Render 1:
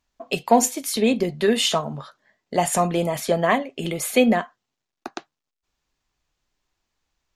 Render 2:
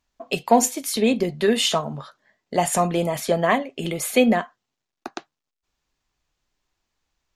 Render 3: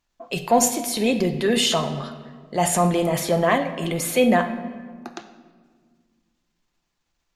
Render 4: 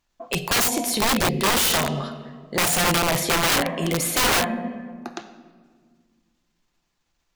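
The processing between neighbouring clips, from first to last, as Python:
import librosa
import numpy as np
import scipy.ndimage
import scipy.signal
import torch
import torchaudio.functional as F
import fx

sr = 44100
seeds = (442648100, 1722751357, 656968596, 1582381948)

y1 = x
y2 = fx.transient(y1, sr, attack_db=-4, sustain_db=4)
y2 = fx.room_shoebox(y2, sr, seeds[0], volume_m3=1900.0, walls='mixed', distance_m=0.81)
y3 = (np.mod(10.0 ** (16.5 / 20.0) * y2 + 1.0, 2.0) - 1.0) / 10.0 ** (16.5 / 20.0)
y3 = y3 * librosa.db_to_amplitude(2.0)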